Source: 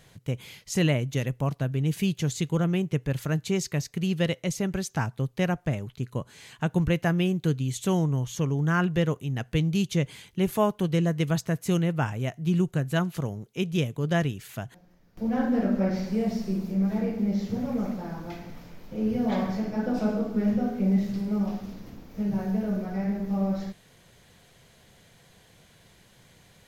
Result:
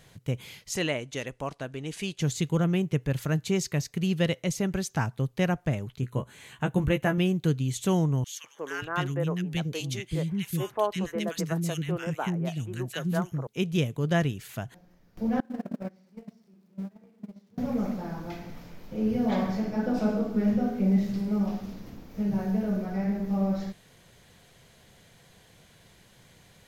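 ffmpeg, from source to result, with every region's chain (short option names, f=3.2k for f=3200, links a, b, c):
-filter_complex "[0:a]asettb=1/sr,asplit=3[a][b][c];[a]atrim=end=0.764[d];[b]atrim=start=0.76:end=2.21,asetpts=PTS-STARTPTS,afade=t=in:d=0.004:c=qsin,afade=t=out:st=1.446:d=0.004:c=qsin,lowpass=f=10k:w=0.5412,lowpass=f=10k:w=1.3066,equalizer=f=130:t=o:w=1.7:g=-14.5[e];[c]atrim=start=2.206[f];[d][e]acrossfade=d=0.004:c1=hsin:c2=qsin[g];[g][f]acrossfade=d=0.004:c1=qsin:c2=hsin,asettb=1/sr,asplit=3[h][i][j];[h]atrim=end=6.014[k];[i]atrim=start=6.01:end=7.18,asetpts=PTS-STARTPTS,afade=t=in:d=0.004:c=qsin,afade=t=out:st=1.166:d=0.004:c=qsin,equalizer=f=5k:t=o:w=0.42:g=-13,asplit=2[l][m];[m]adelay=15,volume=-6dB[n];[l][n]amix=inputs=2:normalize=0,atrim=end_sample=51597[o];[j]atrim=start=7.176[p];[k][o]acrossfade=d=0.004:c1=hsin:c2=qsin[q];[q][p]acrossfade=d=0.004:c1=qsin:c2=hsin,asettb=1/sr,asplit=3[r][s][t];[r]atrim=end=8.244[u];[s]atrim=start=8.24:end=13.47,asetpts=PTS-STARTPTS,afade=t=in:d=0.004:c=qsin,afade=t=out:st=5.226:d=0.004:c=qsin,lowshelf=f=280:g=-5.5,acrossover=split=320|1600[v][w][x];[w]adelay=200[y];[v]adelay=580[z];[z][y][x]amix=inputs=3:normalize=0,atrim=end_sample=230643[aa];[t]atrim=start=13.466[ab];[u][aa]acrossfade=d=0.004:c1=hsin:c2=qsin[ac];[ac][ab]acrossfade=d=0.004:c1=qsin:c2=hsin,asettb=1/sr,asplit=3[ad][ae][af];[ad]atrim=end=15.404[ag];[ae]atrim=start=15.4:end=17.58,asetpts=PTS-STARTPTS,afade=t=in:d=0.004:c=qsin,afade=t=out:st=2.176:d=0.004:c=qsin,aeval=exprs='val(0)+0.5*0.0158*sgn(val(0))':c=same,highpass=f=100:w=0.5412,highpass=f=100:w=1.3066,agate=range=-31dB:threshold=-21dB:ratio=16:release=100:detection=peak[ah];[af]atrim=start=17.576[ai];[ag][ah]acrossfade=d=0.004:c1=hsin:c2=qsin[aj];[aj][ai]acrossfade=d=0.004:c1=qsin:c2=hsin"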